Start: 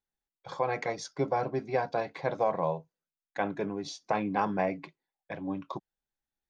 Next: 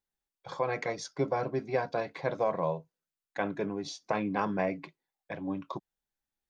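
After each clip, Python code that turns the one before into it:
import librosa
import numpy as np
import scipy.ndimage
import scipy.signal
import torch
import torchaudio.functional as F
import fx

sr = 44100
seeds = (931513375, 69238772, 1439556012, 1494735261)

y = fx.dynamic_eq(x, sr, hz=800.0, q=4.9, threshold_db=-46.0, ratio=4.0, max_db=-6)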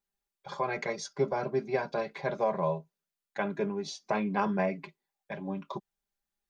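y = x + 0.72 * np.pad(x, (int(5.0 * sr / 1000.0), 0))[:len(x)]
y = y * librosa.db_to_amplitude(-1.0)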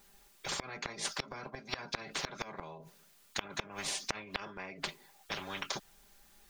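y = fx.gate_flip(x, sr, shuts_db=-23.0, range_db=-29)
y = fx.spectral_comp(y, sr, ratio=10.0)
y = y * librosa.db_to_amplitude(4.5)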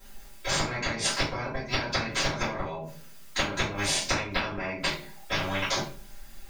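y = fx.room_shoebox(x, sr, seeds[0], volume_m3=32.0, walls='mixed', distance_m=2.1)
y = y * librosa.db_to_amplitude(-1.0)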